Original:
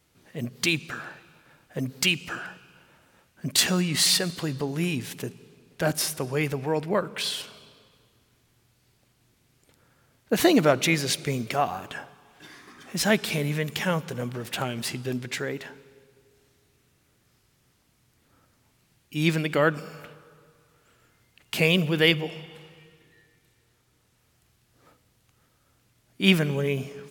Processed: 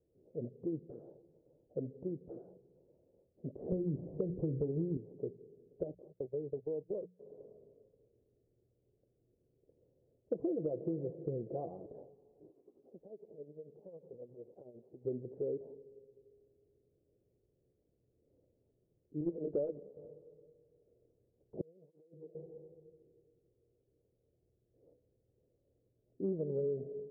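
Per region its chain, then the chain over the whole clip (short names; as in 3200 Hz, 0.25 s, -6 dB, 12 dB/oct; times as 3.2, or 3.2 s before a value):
3.72–4.97 tilt -4.5 dB/oct + notches 60/120/180/240/300/360/420/480 Hz
5.83–7.3 gate -31 dBFS, range -31 dB + notches 60/120/180 Hz + compressor 5:1, threshold -29 dBFS
10.33–11.86 HPF 63 Hz + compressor 2.5:1, threshold -21 dBFS + comb 6 ms, depth 54%
12.5–15.05 compressor 10:1, threshold -33 dBFS + tremolo 11 Hz, depth 62% + low shelf 230 Hz -11.5 dB
19.2–19.97 notch comb 160 Hz + sample leveller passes 2 + upward expander, over -37 dBFS
21.61–22.35 negative-ratio compressor -26 dBFS, ratio -0.5 + passive tone stack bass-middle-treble 5-5-5 + tape flanging out of phase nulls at 1.6 Hz, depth 1.5 ms
whole clip: steep low-pass 520 Hz 36 dB/oct; resonant low shelf 320 Hz -8.5 dB, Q 1.5; compressor 6:1, threshold -30 dBFS; gain -2 dB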